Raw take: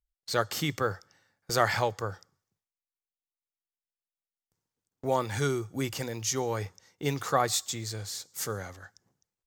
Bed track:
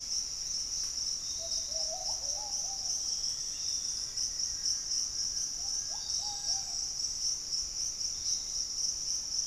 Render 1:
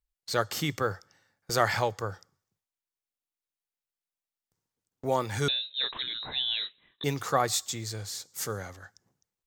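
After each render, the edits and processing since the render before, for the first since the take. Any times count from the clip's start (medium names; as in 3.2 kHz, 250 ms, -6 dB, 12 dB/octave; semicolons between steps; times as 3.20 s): 5.48–7.04 s: frequency inversion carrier 3.9 kHz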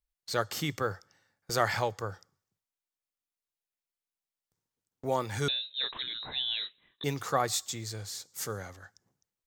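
trim -2.5 dB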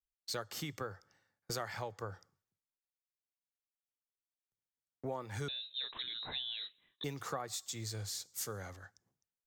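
compression 12:1, threshold -37 dBFS, peak gain reduction 17 dB; three bands expanded up and down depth 40%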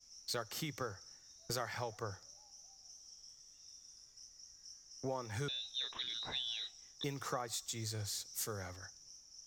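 add bed track -23 dB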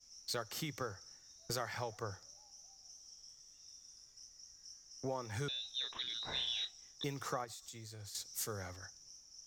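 6.25–6.65 s: flutter echo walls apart 5.7 m, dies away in 0.49 s; 7.44–8.15 s: compression 12:1, threshold -46 dBFS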